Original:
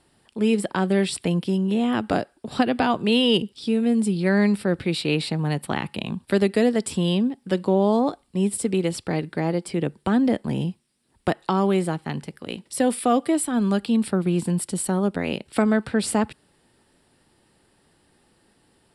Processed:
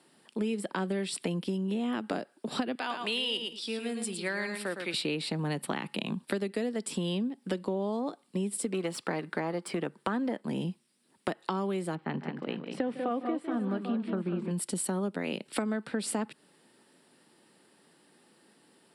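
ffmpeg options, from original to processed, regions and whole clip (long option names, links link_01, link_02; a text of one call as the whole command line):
ffmpeg -i in.wav -filter_complex "[0:a]asettb=1/sr,asplit=3[link_01][link_02][link_03];[link_01]atrim=end=2.754[link_04];[link_02]atrim=start=2.75:end=4.94,asetpts=PTS-STARTPTS,afade=type=in:duration=0.004:curve=qsin,afade=type=out:start_time=2.186:duration=0.004:curve=qsin,highpass=frequency=1300:poles=1,aecho=1:1:110|220:0.422|0.0633,atrim=end_sample=96579[link_05];[link_03]atrim=start=4.936[link_06];[link_04][link_05]acrossfade=duration=0.004:curve1=hsin:curve2=qsin[link_07];[link_07][link_06]acrossfade=duration=0.004:curve1=qsin:curve2=hsin,asettb=1/sr,asplit=3[link_08][link_09][link_10];[link_08]atrim=end=8.724[link_11];[link_09]atrim=start=8.72:end=10.41,asetpts=PTS-STARTPTS,afade=type=in:duration=0.004:curve=qsin,afade=type=out:start_time=1.686:duration=0.004:curve=qsin,aeval=exprs='if(lt(val(0),0),0.708*val(0),val(0))':channel_layout=same,equalizer=frequency=1200:width_type=o:width=1.6:gain=8.5[link_12];[link_10]atrim=start=10.406[link_13];[link_11][link_12]acrossfade=duration=0.004:curve1=hsin:curve2=qsin[link_14];[link_14][link_13]acrossfade=duration=0.004:curve1=qsin:curve2=hsin,asettb=1/sr,asplit=3[link_15][link_16][link_17];[link_15]atrim=end=11.954[link_18];[link_16]atrim=start=11.95:end=14.51,asetpts=PTS-STARTPTS,afade=type=in:duration=0.004:curve=qsin,afade=type=out:start_time=2.556:duration=0.004:curve=qsin,lowpass=2300,aecho=1:1:154|192|432|791:0.168|0.422|0.211|0.2,atrim=end_sample=112896[link_19];[link_17]atrim=start=14.506[link_20];[link_18][link_19]acrossfade=duration=0.004:curve1=hsin:curve2=qsin[link_21];[link_21][link_20]acrossfade=duration=0.004:curve1=qsin:curve2=hsin,highpass=frequency=170:width=0.5412,highpass=frequency=170:width=1.3066,equalizer=frequency=760:width_type=o:width=0.33:gain=-2.5,acompressor=threshold=-29dB:ratio=6" out.wav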